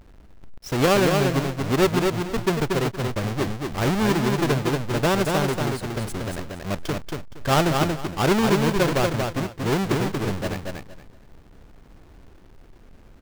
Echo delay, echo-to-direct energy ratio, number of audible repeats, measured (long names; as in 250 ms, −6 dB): 233 ms, −4.0 dB, 3